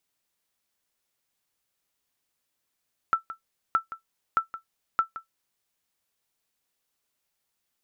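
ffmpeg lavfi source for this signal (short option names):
-f lavfi -i "aevalsrc='0.224*(sin(2*PI*1330*mod(t,0.62))*exp(-6.91*mod(t,0.62)/0.12)+0.188*sin(2*PI*1330*max(mod(t,0.62)-0.17,0))*exp(-6.91*max(mod(t,0.62)-0.17,0)/0.12))':d=2.48:s=44100"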